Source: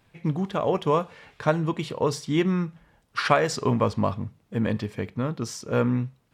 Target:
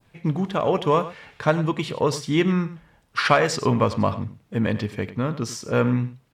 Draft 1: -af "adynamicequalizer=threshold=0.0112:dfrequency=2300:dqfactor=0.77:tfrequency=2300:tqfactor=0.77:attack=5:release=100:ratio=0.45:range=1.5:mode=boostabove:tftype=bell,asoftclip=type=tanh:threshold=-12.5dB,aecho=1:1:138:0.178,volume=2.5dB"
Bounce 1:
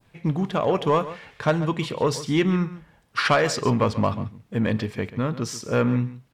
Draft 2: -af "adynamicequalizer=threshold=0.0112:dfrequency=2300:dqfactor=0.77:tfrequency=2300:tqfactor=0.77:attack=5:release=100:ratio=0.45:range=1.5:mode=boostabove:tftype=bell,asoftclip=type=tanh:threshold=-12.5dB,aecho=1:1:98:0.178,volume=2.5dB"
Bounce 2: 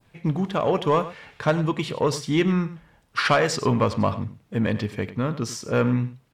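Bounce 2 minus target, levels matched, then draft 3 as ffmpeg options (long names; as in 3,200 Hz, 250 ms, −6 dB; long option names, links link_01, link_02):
soft clipping: distortion +9 dB
-af "adynamicequalizer=threshold=0.0112:dfrequency=2300:dqfactor=0.77:tfrequency=2300:tqfactor=0.77:attack=5:release=100:ratio=0.45:range=1.5:mode=boostabove:tftype=bell,asoftclip=type=tanh:threshold=-5.5dB,aecho=1:1:98:0.178,volume=2.5dB"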